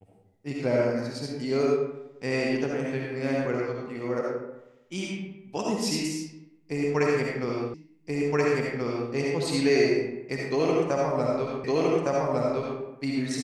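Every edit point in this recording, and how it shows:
0:07.74: the same again, the last 1.38 s
0:11.64: the same again, the last 1.16 s

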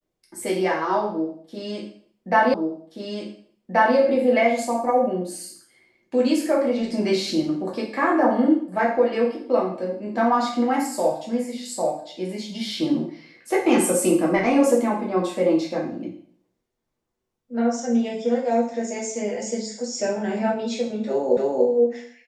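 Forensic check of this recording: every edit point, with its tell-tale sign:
0:02.54: the same again, the last 1.43 s
0:21.37: the same again, the last 0.29 s

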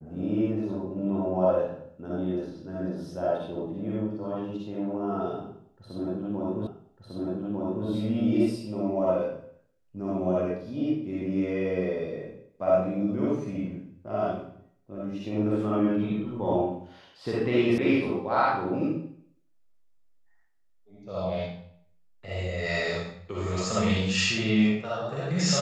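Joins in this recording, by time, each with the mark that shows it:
0:06.67: the same again, the last 1.2 s
0:17.78: cut off before it has died away

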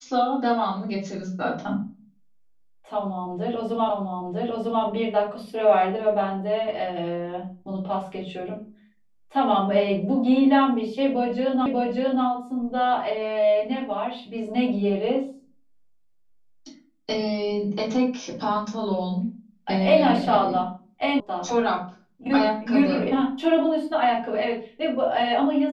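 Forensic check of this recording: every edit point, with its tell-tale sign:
0:03.90: the same again, the last 0.95 s
0:11.66: the same again, the last 0.59 s
0:21.20: cut off before it has died away

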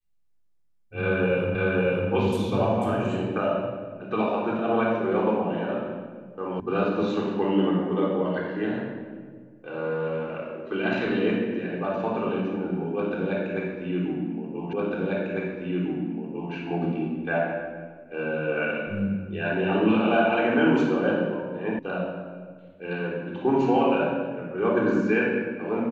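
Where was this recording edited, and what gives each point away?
0:01.55: the same again, the last 0.55 s
0:06.60: cut off before it has died away
0:14.73: the same again, the last 1.8 s
0:21.79: cut off before it has died away

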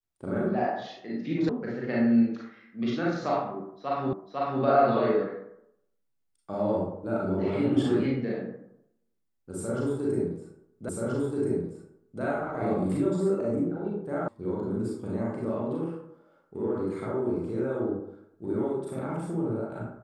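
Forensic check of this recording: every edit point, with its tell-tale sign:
0:01.49: cut off before it has died away
0:04.13: the same again, the last 0.5 s
0:10.89: the same again, the last 1.33 s
0:14.28: cut off before it has died away

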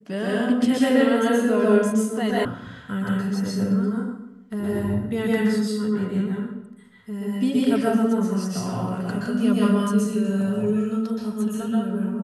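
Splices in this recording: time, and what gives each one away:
0:02.45: cut off before it has died away

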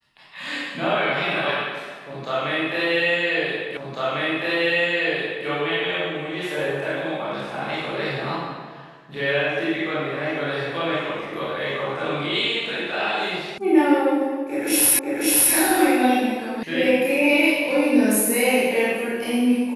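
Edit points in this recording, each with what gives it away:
0:03.77: the same again, the last 1.7 s
0:13.58: cut off before it has died away
0:14.99: the same again, the last 0.54 s
0:16.63: cut off before it has died away

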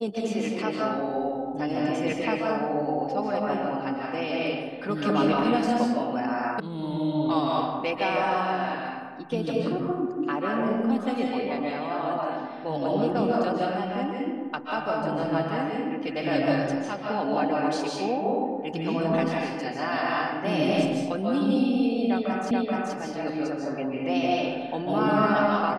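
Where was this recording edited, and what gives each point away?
0:06.60: cut off before it has died away
0:22.51: the same again, the last 0.43 s

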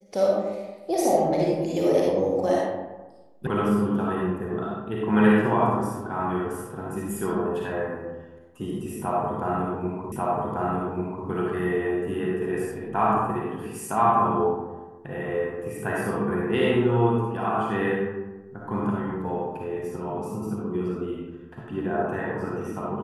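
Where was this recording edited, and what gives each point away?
0:03.47: cut off before it has died away
0:10.12: the same again, the last 1.14 s

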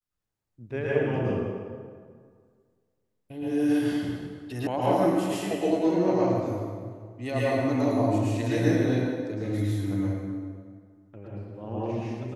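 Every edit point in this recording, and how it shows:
0:04.67: cut off before it has died away

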